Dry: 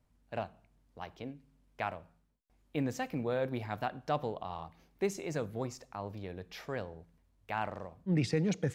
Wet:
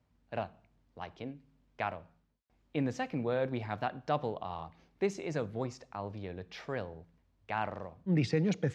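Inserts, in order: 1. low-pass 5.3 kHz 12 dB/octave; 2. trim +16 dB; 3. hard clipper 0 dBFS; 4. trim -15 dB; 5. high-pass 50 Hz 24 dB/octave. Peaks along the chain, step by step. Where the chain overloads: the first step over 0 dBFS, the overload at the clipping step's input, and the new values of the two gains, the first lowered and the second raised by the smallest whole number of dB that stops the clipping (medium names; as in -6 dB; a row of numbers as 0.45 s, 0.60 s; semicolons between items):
-19.0 dBFS, -3.0 dBFS, -3.0 dBFS, -18.0 dBFS, -17.5 dBFS; nothing clips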